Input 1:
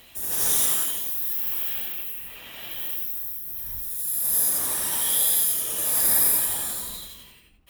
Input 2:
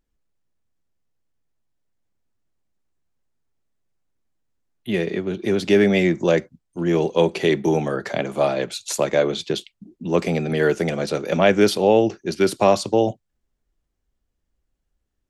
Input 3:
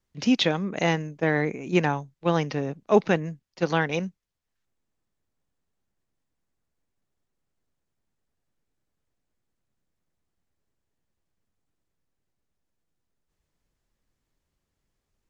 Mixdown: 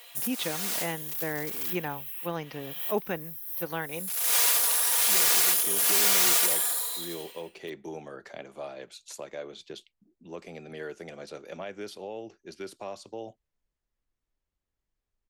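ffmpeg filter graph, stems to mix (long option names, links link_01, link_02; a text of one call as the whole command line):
ffmpeg -i stem1.wav -i stem2.wav -i stem3.wav -filter_complex "[0:a]aeval=exprs='(mod(7.94*val(0)+1,2)-1)/7.94':channel_layout=same,highpass=frequency=400:width=0.5412,highpass=frequency=400:width=1.3066,aecho=1:1:4.2:0.65,volume=0dB[link_01];[1:a]alimiter=limit=-10dB:level=0:latency=1:release=319,adelay=200,volume=-16dB[link_02];[2:a]bass=frequency=250:gain=4,treble=frequency=4000:gain=-4,volume=-8.5dB,asplit=2[link_03][link_04];[link_04]apad=whole_len=339522[link_05];[link_01][link_05]sidechaincompress=threshold=-41dB:ratio=4:attack=16:release=390[link_06];[link_06][link_02][link_03]amix=inputs=3:normalize=0,equalizer=frequency=150:width_type=o:width=1.9:gain=-7.5" out.wav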